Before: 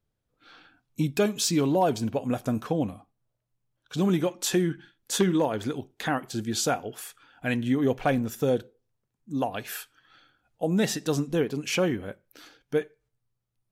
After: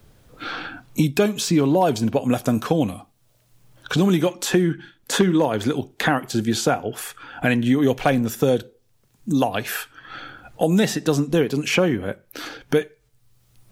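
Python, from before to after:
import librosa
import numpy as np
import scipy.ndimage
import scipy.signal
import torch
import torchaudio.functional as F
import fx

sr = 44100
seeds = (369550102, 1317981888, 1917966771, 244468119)

y = fx.band_squash(x, sr, depth_pct=70)
y = F.gain(torch.from_numpy(y), 6.5).numpy()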